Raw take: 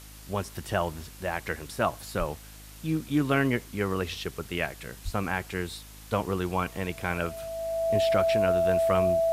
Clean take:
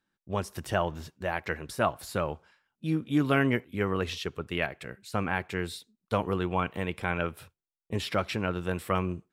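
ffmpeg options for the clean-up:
-filter_complex "[0:a]bandreject=f=52.3:t=h:w=4,bandreject=f=104.6:t=h:w=4,bandreject=f=156.9:t=h:w=4,bandreject=f=209.2:t=h:w=4,bandreject=f=261.5:t=h:w=4,bandreject=f=313.8:t=h:w=4,bandreject=f=660:w=30,asplit=3[a][b][c];[a]afade=t=out:st=2.18:d=0.02[d];[b]highpass=f=140:w=0.5412,highpass=f=140:w=1.3066,afade=t=in:st=2.18:d=0.02,afade=t=out:st=2.3:d=0.02[e];[c]afade=t=in:st=2.3:d=0.02[f];[d][e][f]amix=inputs=3:normalize=0,asplit=3[g][h][i];[g]afade=t=out:st=5.04:d=0.02[j];[h]highpass=f=140:w=0.5412,highpass=f=140:w=1.3066,afade=t=in:st=5.04:d=0.02,afade=t=out:st=5.16:d=0.02[k];[i]afade=t=in:st=5.16:d=0.02[l];[j][k][l]amix=inputs=3:normalize=0,afwtdn=0.0035"

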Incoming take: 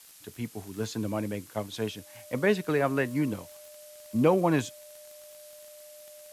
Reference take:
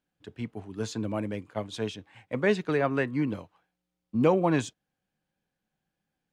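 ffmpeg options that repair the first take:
-af "adeclick=t=4,bandreject=f=600:w=30,afftdn=nr=30:nf=-49"

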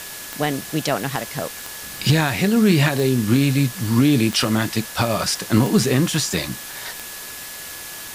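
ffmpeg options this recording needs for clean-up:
-af "adeclick=t=4,bandreject=f=1.7k:w=30,afwtdn=0.022"

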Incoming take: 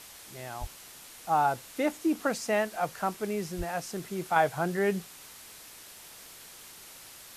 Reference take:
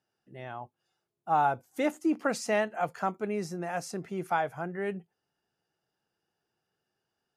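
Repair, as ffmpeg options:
-filter_complex "[0:a]asplit=3[a][b][c];[a]afade=t=out:st=0.6:d=0.02[d];[b]highpass=f=140:w=0.5412,highpass=f=140:w=1.3066,afade=t=in:st=0.6:d=0.02,afade=t=out:st=0.72:d=0.02[e];[c]afade=t=in:st=0.72:d=0.02[f];[d][e][f]amix=inputs=3:normalize=0,asplit=3[g][h][i];[g]afade=t=out:st=3.57:d=0.02[j];[h]highpass=f=140:w=0.5412,highpass=f=140:w=1.3066,afade=t=in:st=3.57:d=0.02,afade=t=out:st=3.69:d=0.02[k];[i]afade=t=in:st=3.69:d=0.02[l];[j][k][l]amix=inputs=3:normalize=0,afwtdn=0.0045,asetnsamples=n=441:p=0,asendcmd='4.36 volume volume -6dB',volume=0dB"

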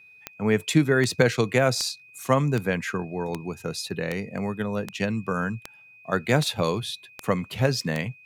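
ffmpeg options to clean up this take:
-af "adeclick=t=4,bandreject=f=2.5k:w=30"

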